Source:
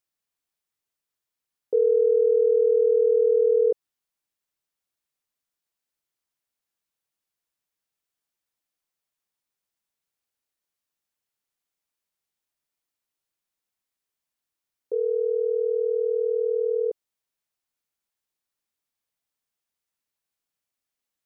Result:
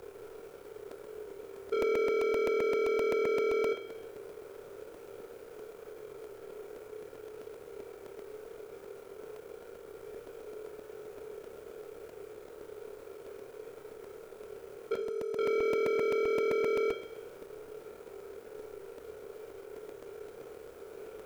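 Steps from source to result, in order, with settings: spectral levelling over time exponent 0.4; 14.94–15.39 s: expander -7 dBFS; peaking EQ 300 Hz -12.5 dB 1.4 oct; in parallel at -2 dB: compression, threshold -36 dBFS, peak gain reduction 12 dB; on the sum: peak limiter -23.5 dBFS, peak gain reduction 6 dB; waveshaping leveller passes 3; frequency shift -33 Hz; on a send: flutter echo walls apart 4.8 m, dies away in 0.26 s; on the sum: Schroeder reverb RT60 1 s, combs from 29 ms, DRR 7 dB; crackling interface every 0.13 s, samples 128, repeat, from 0.39 s; trim -2 dB

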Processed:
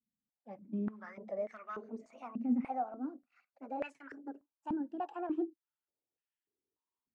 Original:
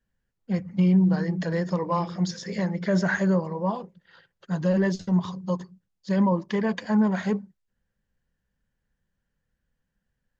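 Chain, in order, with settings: gliding tape speed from 103% -> 188%; step-sequenced band-pass 3.4 Hz 230–1900 Hz; trim -5 dB

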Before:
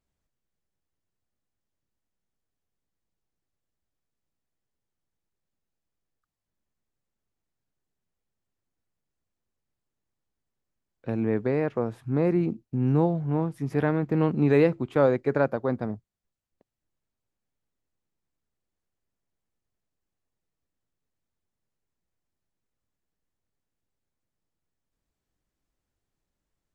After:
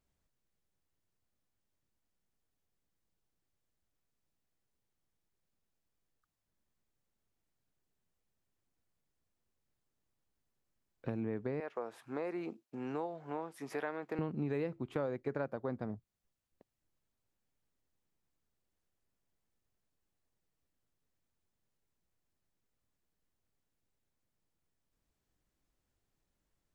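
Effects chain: 11.60–14.19 s: high-pass 560 Hz 12 dB/octave; compression 4:1, threshold -36 dBFS, peak gain reduction 17 dB

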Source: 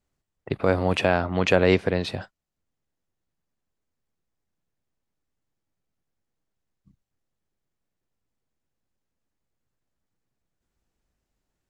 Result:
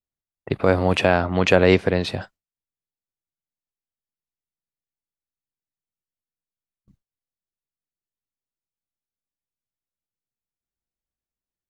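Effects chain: gate with hold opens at -46 dBFS; trim +3.5 dB

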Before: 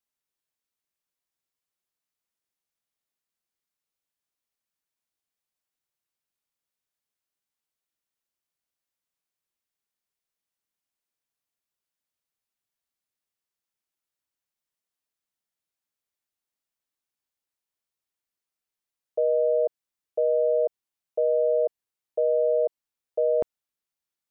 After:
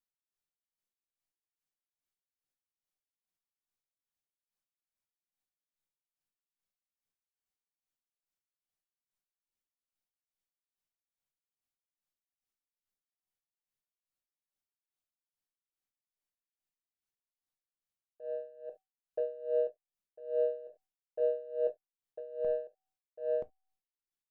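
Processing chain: bass shelf 220 Hz +7.5 dB; feedback comb 760 Hz, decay 0.42 s, mix 70%; in parallel at -9.5 dB: saturation -34 dBFS, distortion -11 dB; on the sum: reverse echo 977 ms -6 dB; on a send at -10 dB: reverberation, pre-delay 5 ms; on the sum: logarithmic tremolo 2.4 Hz, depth 20 dB

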